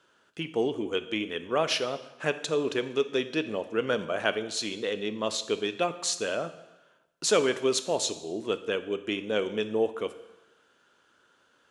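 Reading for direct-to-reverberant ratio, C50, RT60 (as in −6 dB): 11.0 dB, 13.5 dB, 1.0 s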